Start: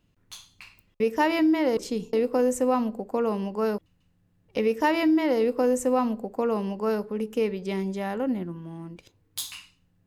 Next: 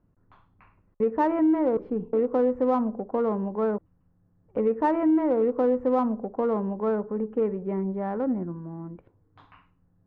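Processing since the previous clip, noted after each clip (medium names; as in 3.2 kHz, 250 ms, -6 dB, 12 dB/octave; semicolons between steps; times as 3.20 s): low-pass 1.4 kHz 24 dB/octave; in parallel at -9.5 dB: saturation -27.5 dBFS, distortion -8 dB; on the sum: trim -1 dB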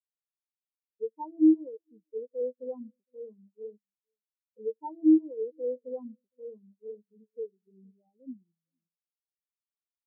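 delay 460 ms -12 dB; spectral contrast expander 4:1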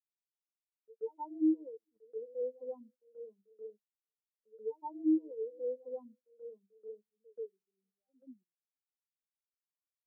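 high-pass 390 Hz 12 dB/octave; gate -59 dBFS, range -18 dB; reverse echo 133 ms -19.5 dB; trim -3.5 dB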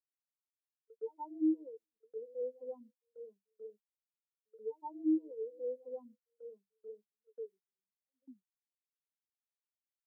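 gate -58 dBFS, range -19 dB; trim -2 dB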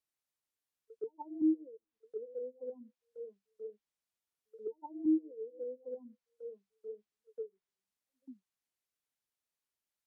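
low-pass that closes with the level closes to 330 Hz, closed at -38.5 dBFS; trim +4 dB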